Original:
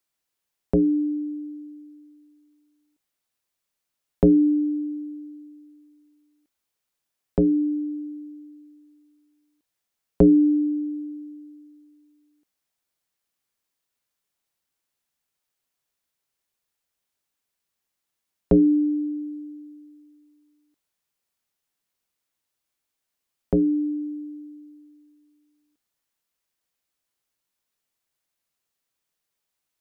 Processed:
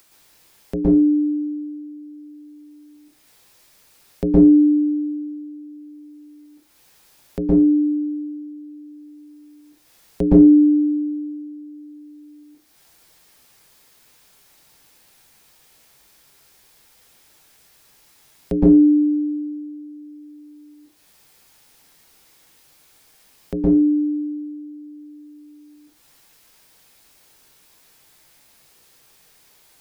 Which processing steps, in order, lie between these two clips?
reverberation RT60 0.30 s, pre-delay 110 ms, DRR -7 dB; upward compressor, threshold -28 dBFS; trim -5.5 dB

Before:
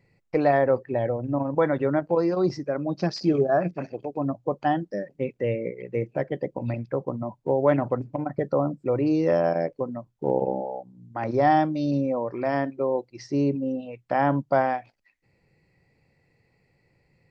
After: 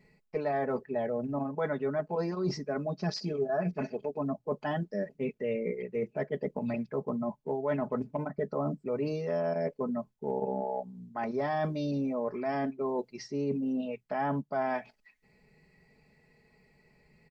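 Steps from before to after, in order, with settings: short-mantissa float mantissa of 8-bit; comb 4.7 ms, depth 93%; reverse; compression 4:1, threshold -30 dBFS, peak gain reduction 14.5 dB; reverse

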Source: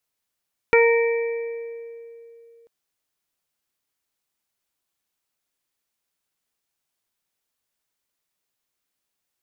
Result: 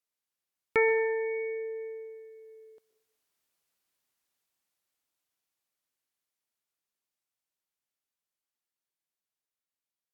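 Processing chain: Doppler pass-by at 3.20 s, 13 m/s, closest 15 m; bass shelf 100 Hz -7 dB; plate-style reverb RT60 0.64 s, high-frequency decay 0.95×, pre-delay 105 ms, DRR 15.5 dB; tape speed -7%

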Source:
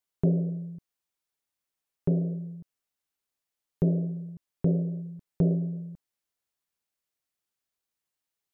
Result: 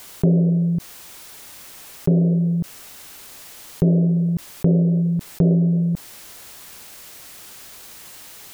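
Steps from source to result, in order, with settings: level flattener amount 70%; trim +6 dB

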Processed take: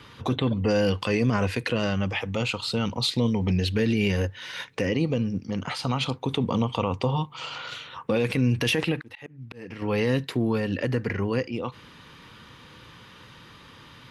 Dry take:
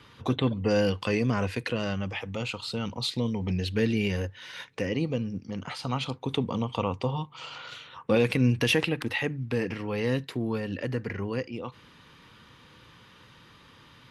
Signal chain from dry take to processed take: 8.95–9.82 s: slow attack 675 ms; peak limiter -20 dBFS, peak gain reduction 8.5 dB; trim +5.5 dB

